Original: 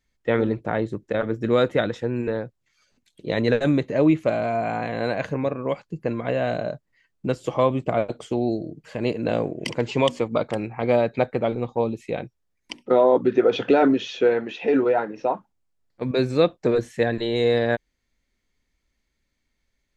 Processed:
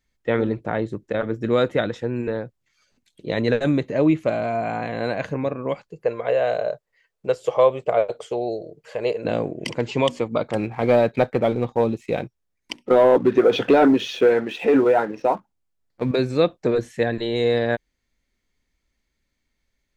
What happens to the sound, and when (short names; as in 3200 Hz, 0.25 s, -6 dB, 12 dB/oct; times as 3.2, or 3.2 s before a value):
5.88–9.25 resonant low shelf 360 Hz -8 dB, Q 3
10.54–16.16 sample leveller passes 1